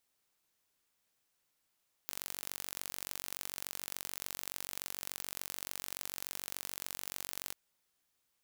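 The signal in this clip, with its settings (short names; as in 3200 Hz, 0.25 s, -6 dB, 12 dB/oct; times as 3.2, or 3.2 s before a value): pulse train 46.9/s, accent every 2, -11.5 dBFS 5.44 s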